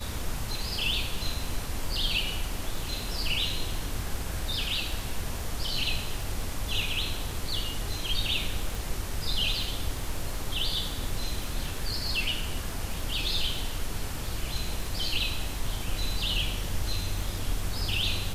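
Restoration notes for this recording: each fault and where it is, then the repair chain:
crackle 31/s -35 dBFS
8.75 pop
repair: de-click

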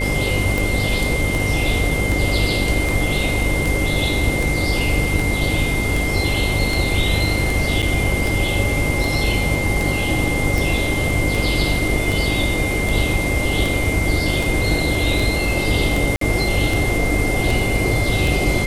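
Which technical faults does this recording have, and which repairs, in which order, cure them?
buzz 50 Hz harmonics 11 -24 dBFS
tick 78 rpm
tone 2100 Hz -23 dBFS
7.82–7.83 gap 6.9 ms
16.16–16.21 gap 53 ms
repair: de-click; de-hum 50 Hz, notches 11; notch 2100 Hz, Q 30; interpolate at 7.82, 6.9 ms; interpolate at 16.16, 53 ms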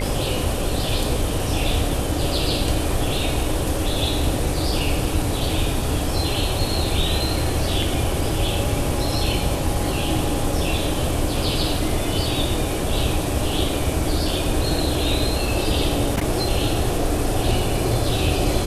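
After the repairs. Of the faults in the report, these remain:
none

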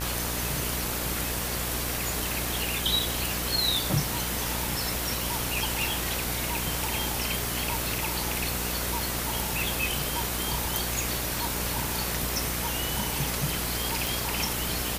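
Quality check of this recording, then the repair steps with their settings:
buzz 60 Hz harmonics 29 -35 dBFS
crackle 26/s -35 dBFS
14.07 pop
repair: de-click; de-hum 60 Hz, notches 29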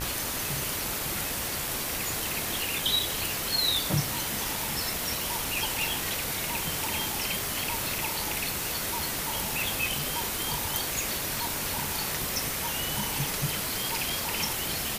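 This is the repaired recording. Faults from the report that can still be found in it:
none

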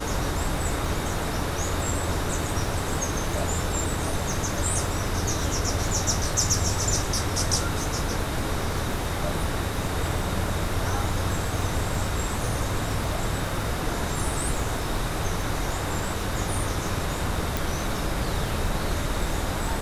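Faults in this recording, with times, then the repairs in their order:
crackle 59/s -33 dBFS
17.57 pop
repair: de-click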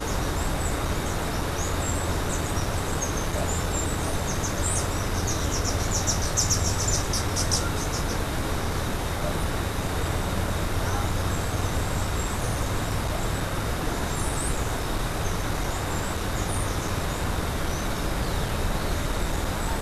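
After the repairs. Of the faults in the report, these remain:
none

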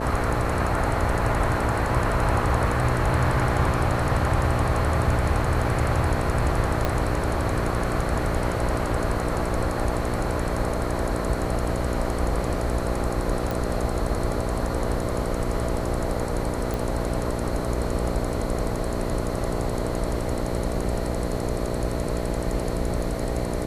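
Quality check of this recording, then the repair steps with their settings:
buzz 60 Hz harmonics 11 -29 dBFS
6.85 pop -10 dBFS
13.51 pop
16.74 pop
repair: de-click; de-hum 60 Hz, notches 11

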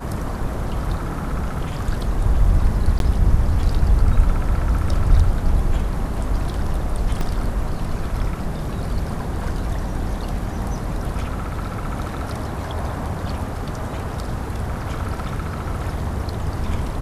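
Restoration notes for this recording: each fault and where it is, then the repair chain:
2.99–3 gap 12 ms
7.21 gap 2 ms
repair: interpolate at 2.99, 12 ms; interpolate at 7.21, 2 ms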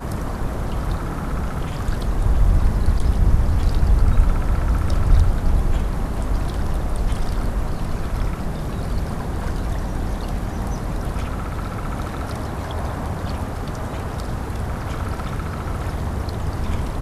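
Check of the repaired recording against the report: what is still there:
none

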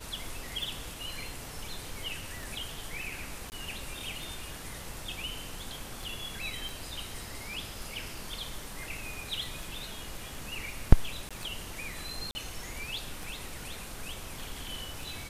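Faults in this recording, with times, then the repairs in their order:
tick 33 1/3 rpm
3.5–3.52 gap 19 ms
6.69 pop
11.29–11.31 gap 16 ms
12.31–12.35 gap 40 ms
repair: de-click; interpolate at 3.5, 19 ms; interpolate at 11.29, 16 ms; interpolate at 12.31, 40 ms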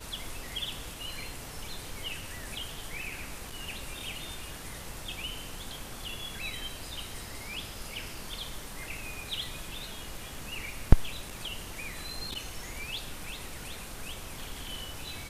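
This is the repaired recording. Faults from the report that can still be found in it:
none

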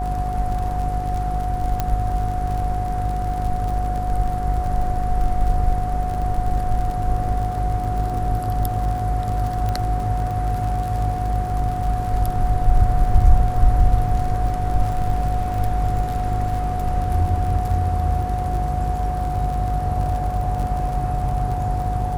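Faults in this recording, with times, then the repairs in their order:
buzz 50 Hz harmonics 11 -25 dBFS
crackle 47/s -27 dBFS
tone 730 Hz -25 dBFS
1.8 pop -8 dBFS
9.69 pop -13 dBFS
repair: de-click; de-hum 50 Hz, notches 11; notch 730 Hz, Q 30

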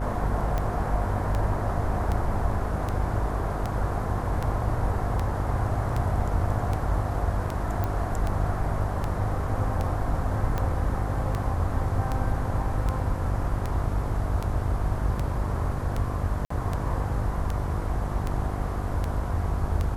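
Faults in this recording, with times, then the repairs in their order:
buzz 50 Hz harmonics 17 -31 dBFS
tick 78 rpm -16 dBFS
7.84 pop -16 dBFS
16.45–16.5 gap 54 ms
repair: de-click; de-hum 50 Hz, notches 17; interpolate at 16.45, 54 ms

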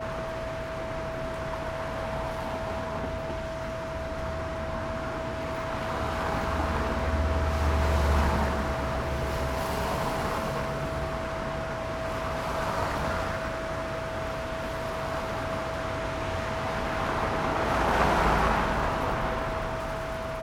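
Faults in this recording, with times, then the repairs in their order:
tone 650 Hz -34 dBFS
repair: notch 650 Hz, Q 30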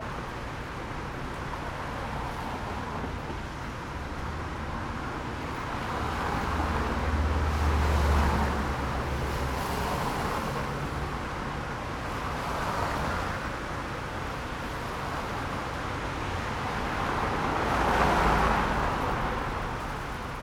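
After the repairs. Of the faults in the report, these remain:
none

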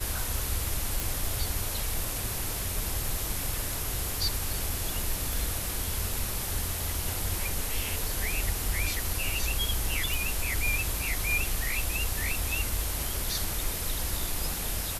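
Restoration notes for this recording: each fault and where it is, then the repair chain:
1 pop
5.33 pop
10.14 pop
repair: de-click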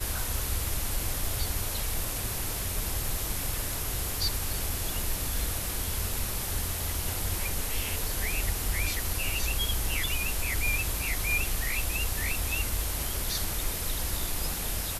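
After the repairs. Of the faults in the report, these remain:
5.33 pop

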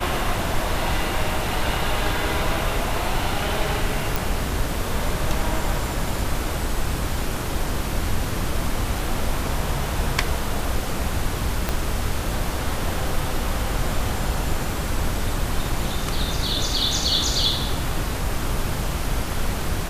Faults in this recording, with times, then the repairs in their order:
4.16 pop
11.69 pop -7 dBFS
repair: de-click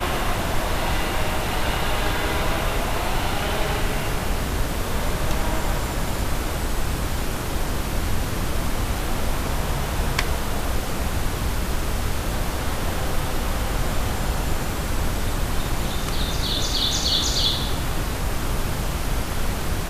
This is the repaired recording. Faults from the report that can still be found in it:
11.69 pop

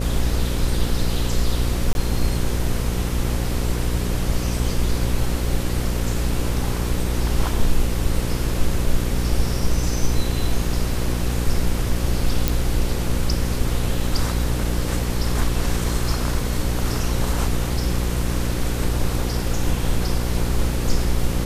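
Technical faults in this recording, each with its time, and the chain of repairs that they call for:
buzz 60 Hz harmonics 9 -24 dBFS
1.93–1.95 gap 21 ms
12.48 pop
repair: de-click; de-hum 60 Hz, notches 9; interpolate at 1.93, 21 ms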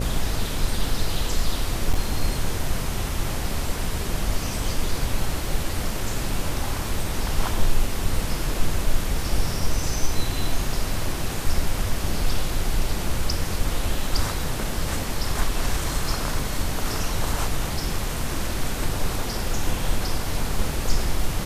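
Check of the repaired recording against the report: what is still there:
none

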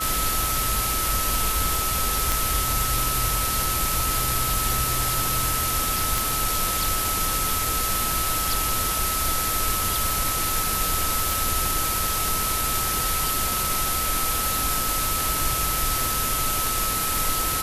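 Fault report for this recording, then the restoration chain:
tone 1300 Hz -28 dBFS
2.32 pop
6.18 pop
11.31 pop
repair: de-click; notch 1300 Hz, Q 30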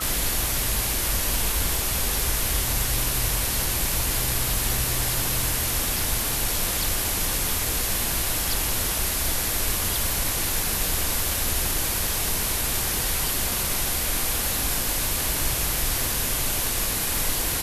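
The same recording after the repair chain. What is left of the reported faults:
none

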